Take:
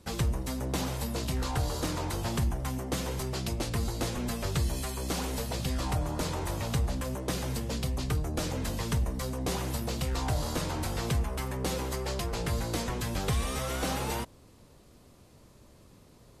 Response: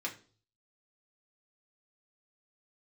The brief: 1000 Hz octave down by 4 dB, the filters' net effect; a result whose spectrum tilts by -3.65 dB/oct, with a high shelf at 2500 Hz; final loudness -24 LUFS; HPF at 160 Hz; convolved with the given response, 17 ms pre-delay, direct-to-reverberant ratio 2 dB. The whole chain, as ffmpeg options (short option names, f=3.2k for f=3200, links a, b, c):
-filter_complex "[0:a]highpass=160,equalizer=f=1k:t=o:g=-6,highshelf=f=2.5k:g=5,asplit=2[a][b];[1:a]atrim=start_sample=2205,adelay=17[c];[b][c]afir=irnorm=-1:irlink=0,volume=-4.5dB[d];[a][d]amix=inputs=2:normalize=0,volume=8dB"